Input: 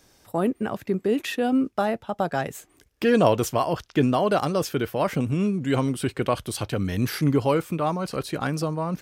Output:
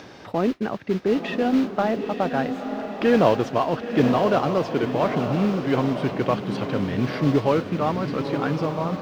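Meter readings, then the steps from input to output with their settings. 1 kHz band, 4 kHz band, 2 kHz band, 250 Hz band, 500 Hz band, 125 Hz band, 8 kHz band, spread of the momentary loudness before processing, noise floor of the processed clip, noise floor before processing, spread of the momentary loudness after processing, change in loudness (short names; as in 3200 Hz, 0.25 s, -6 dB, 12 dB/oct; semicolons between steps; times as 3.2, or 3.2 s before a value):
+2.0 dB, -0.5 dB, +1.5 dB, +2.0 dB, +2.0 dB, 0.0 dB, under -10 dB, 7 LU, -42 dBFS, -62 dBFS, 6 LU, +1.5 dB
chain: HPF 130 Hz; upward compressor, threshold -27 dBFS; modulation noise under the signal 11 dB; air absorption 250 m; diffused feedback echo 0.956 s, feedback 42%, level -7 dB; gain +2 dB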